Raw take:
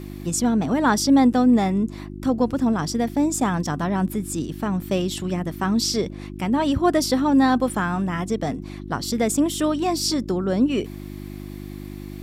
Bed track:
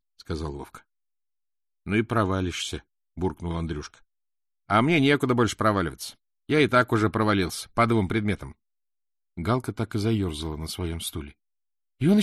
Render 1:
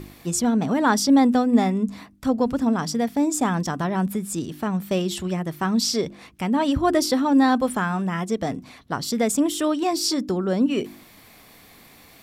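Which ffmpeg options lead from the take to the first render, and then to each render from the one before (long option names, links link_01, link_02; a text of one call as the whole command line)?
ffmpeg -i in.wav -af "bandreject=frequency=50:width_type=h:width=4,bandreject=frequency=100:width_type=h:width=4,bandreject=frequency=150:width_type=h:width=4,bandreject=frequency=200:width_type=h:width=4,bandreject=frequency=250:width_type=h:width=4,bandreject=frequency=300:width_type=h:width=4,bandreject=frequency=350:width_type=h:width=4" out.wav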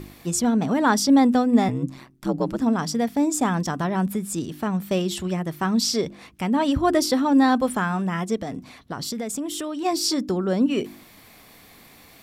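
ffmpeg -i in.wav -filter_complex "[0:a]asettb=1/sr,asplit=3[link_01][link_02][link_03];[link_01]atrim=end=1.684[link_04];[link_02]atrim=start=1.68:end=2.6,asetpts=PTS-STARTPTS,afade=type=in:duration=0.004:curve=qsin,afade=type=out:start_time=0.916:duration=0.004:curve=qsin,aeval=exprs='val(0)*sin(2*PI*65*n/s)':channel_layout=same[link_05];[link_03]atrim=start=2.596[link_06];[link_04][link_05]acrossfade=duration=0.004:curve1=hsin:curve2=qsin[link_07];[link_07][link_06]acrossfade=duration=0.004:curve1=qsin:curve2=hsin,asplit=3[link_08][link_09][link_10];[link_08]afade=type=out:start_time=8.39:duration=0.02[link_11];[link_09]acompressor=threshold=-26dB:ratio=5:attack=3.2:release=140:knee=1:detection=peak,afade=type=in:start_time=8.39:duration=0.02,afade=type=out:start_time=9.84:duration=0.02[link_12];[link_10]afade=type=in:start_time=9.84:duration=0.02[link_13];[link_11][link_12][link_13]amix=inputs=3:normalize=0" out.wav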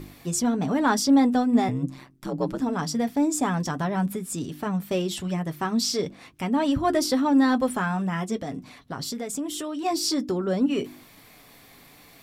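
ffmpeg -i in.wav -filter_complex "[0:a]flanger=delay=6.6:depth=1.1:regen=-46:speed=1.5:shape=triangular,asplit=2[link_01][link_02];[link_02]asoftclip=type=tanh:threshold=-23.5dB,volume=-11dB[link_03];[link_01][link_03]amix=inputs=2:normalize=0" out.wav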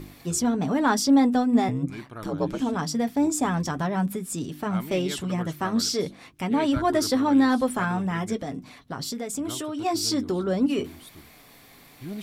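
ffmpeg -i in.wav -i bed.wav -filter_complex "[1:a]volume=-16dB[link_01];[0:a][link_01]amix=inputs=2:normalize=0" out.wav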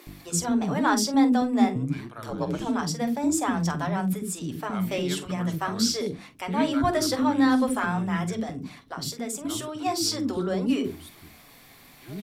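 ffmpeg -i in.wav -filter_complex "[0:a]asplit=2[link_01][link_02];[link_02]adelay=46,volume=-13dB[link_03];[link_01][link_03]amix=inputs=2:normalize=0,acrossover=split=410[link_04][link_05];[link_04]adelay=70[link_06];[link_06][link_05]amix=inputs=2:normalize=0" out.wav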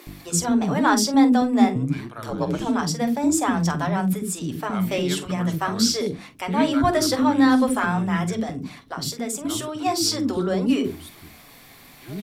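ffmpeg -i in.wav -af "volume=4dB" out.wav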